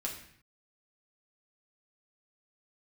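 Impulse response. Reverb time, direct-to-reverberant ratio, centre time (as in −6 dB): 0.60 s, −2.0 dB, 26 ms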